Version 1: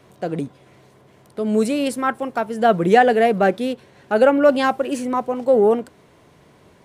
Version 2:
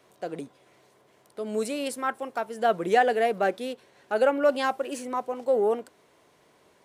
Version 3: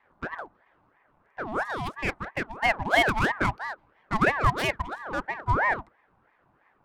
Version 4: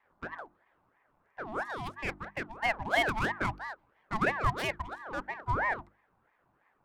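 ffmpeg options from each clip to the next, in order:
ffmpeg -i in.wav -af "bass=frequency=250:gain=-12,treble=frequency=4000:gain=3,volume=-7dB" out.wav
ffmpeg -i in.wav -af "adynamicsmooth=sensitivity=4.5:basefreq=880,highshelf=frequency=8200:gain=6.5,aeval=exprs='val(0)*sin(2*PI*940*n/s+940*0.55/3*sin(2*PI*3*n/s))':channel_layout=same,volume=2dB" out.wav
ffmpeg -i in.wav -af "bandreject=frequency=50:width_type=h:width=6,bandreject=frequency=100:width_type=h:width=6,bandreject=frequency=150:width_type=h:width=6,bandreject=frequency=200:width_type=h:width=6,bandreject=frequency=250:width_type=h:width=6,bandreject=frequency=300:width_type=h:width=6,bandreject=frequency=350:width_type=h:width=6,volume=-6dB" out.wav

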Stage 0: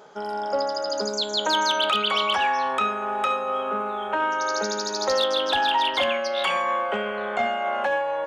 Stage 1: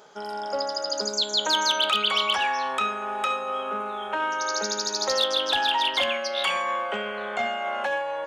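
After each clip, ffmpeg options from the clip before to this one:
ffmpeg -i in.wav -af "highshelf=frequency=2200:gain=8.5,volume=-4.5dB" out.wav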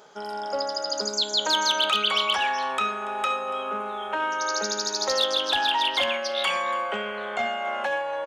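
ffmpeg -i in.wav -af "aecho=1:1:285:0.119" out.wav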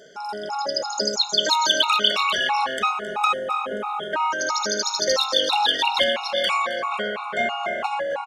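ffmpeg -i in.wav -filter_complex "[0:a]aresample=32000,aresample=44100,asplit=5[link_01][link_02][link_03][link_04][link_05];[link_02]adelay=266,afreqshift=-42,volume=-13dB[link_06];[link_03]adelay=532,afreqshift=-84,volume=-21.6dB[link_07];[link_04]adelay=798,afreqshift=-126,volume=-30.3dB[link_08];[link_05]adelay=1064,afreqshift=-168,volume=-38.9dB[link_09];[link_01][link_06][link_07][link_08][link_09]amix=inputs=5:normalize=0,afftfilt=real='re*gt(sin(2*PI*3*pts/sr)*(1-2*mod(floor(b*sr/1024/720),2)),0)':imag='im*gt(sin(2*PI*3*pts/sr)*(1-2*mod(floor(b*sr/1024/720),2)),0)':win_size=1024:overlap=0.75,volume=6dB" out.wav

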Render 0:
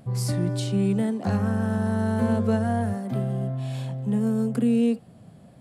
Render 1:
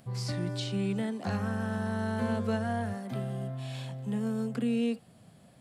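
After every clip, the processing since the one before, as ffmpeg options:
ffmpeg -i in.wav -filter_complex "[0:a]acrossover=split=5600[link_01][link_02];[link_02]acompressor=threshold=-59dB:ratio=4:attack=1:release=60[link_03];[link_01][link_03]amix=inputs=2:normalize=0,tiltshelf=frequency=1100:gain=-5,volume=-3.5dB" out.wav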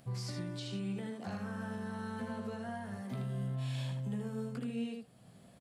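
ffmpeg -i in.wav -af "alimiter=level_in=5.5dB:limit=-24dB:level=0:latency=1:release=498,volume=-5.5dB,aecho=1:1:16|78:0.447|0.596,volume=-3dB" out.wav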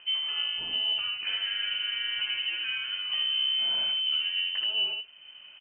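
ffmpeg -i in.wav -af "lowpass=frequency=2700:width_type=q:width=0.5098,lowpass=frequency=2700:width_type=q:width=0.6013,lowpass=frequency=2700:width_type=q:width=0.9,lowpass=frequency=2700:width_type=q:width=2.563,afreqshift=-3200,volume=9dB" out.wav

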